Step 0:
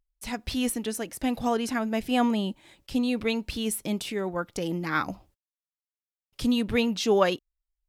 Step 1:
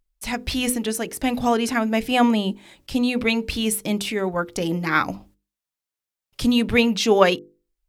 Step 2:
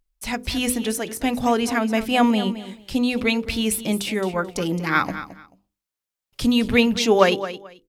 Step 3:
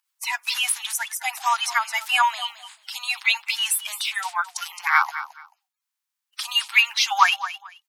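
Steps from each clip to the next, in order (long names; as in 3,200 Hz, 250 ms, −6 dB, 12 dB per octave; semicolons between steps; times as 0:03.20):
mains-hum notches 50/100/150/200/250/300/350/400/450/500 Hz; dynamic equaliser 2,300 Hz, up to +4 dB, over −44 dBFS, Q 2.9; level +6.5 dB
repeating echo 218 ms, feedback 20%, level −13 dB
spectral magnitudes quantised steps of 30 dB; Butterworth high-pass 820 Hz 72 dB per octave; level +3.5 dB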